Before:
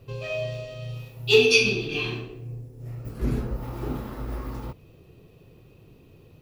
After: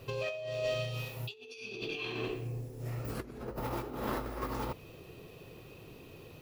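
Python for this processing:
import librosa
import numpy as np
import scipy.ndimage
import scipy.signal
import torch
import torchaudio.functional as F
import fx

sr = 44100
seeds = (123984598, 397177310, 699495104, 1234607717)

y = fx.dynamic_eq(x, sr, hz=490.0, q=0.71, threshold_db=-39.0, ratio=4.0, max_db=5)
y = fx.over_compress(y, sr, threshold_db=-35.0, ratio=-1.0)
y = fx.low_shelf(y, sr, hz=320.0, db=-11.0)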